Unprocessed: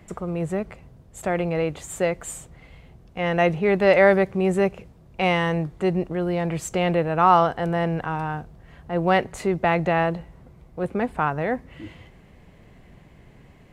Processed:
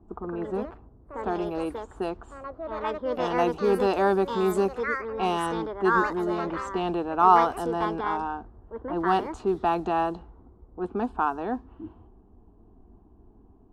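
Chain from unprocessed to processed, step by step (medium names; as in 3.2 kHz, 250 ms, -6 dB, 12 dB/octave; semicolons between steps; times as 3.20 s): static phaser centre 550 Hz, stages 6; ever faster or slower copies 155 ms, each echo +4 st, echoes 2, each echo -6 dB; level-controlled noise filter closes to 610 Hz, open at -21 dBFS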